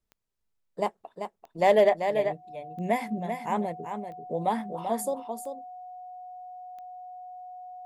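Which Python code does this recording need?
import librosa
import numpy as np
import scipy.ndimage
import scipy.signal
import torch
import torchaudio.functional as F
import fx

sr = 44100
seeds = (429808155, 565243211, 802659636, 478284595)

y = fx.fix_declip(x, sr, threshold_db=-11.5)
y = fx.fix_declick_ar(y, sr, threshold=10.0)
y = fx.notch(y, sr, hz=730.0, q=30.0)
y = fx.fix_echo_inverse(y, sr, delay_ms=389, level_db=-7.5)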